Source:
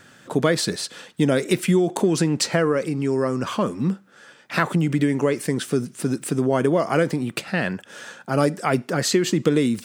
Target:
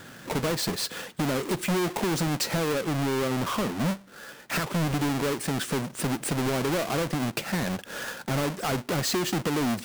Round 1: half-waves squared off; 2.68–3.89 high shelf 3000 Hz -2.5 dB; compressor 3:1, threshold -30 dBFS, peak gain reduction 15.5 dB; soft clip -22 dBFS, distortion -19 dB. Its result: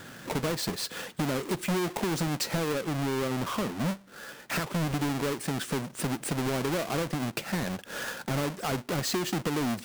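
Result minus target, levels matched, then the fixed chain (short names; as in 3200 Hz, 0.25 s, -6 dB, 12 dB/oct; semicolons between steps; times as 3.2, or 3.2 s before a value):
compressor: peak gain reduction +4.5 dB
half-waves squared off; 2.68–3.89 high shelf 3000 Hz -2.5 dB; compressor 3:1, threshold -23.5 dBFS, peak gain reduction 11 dB; soft clip -22 dBFS, distortion -14 dB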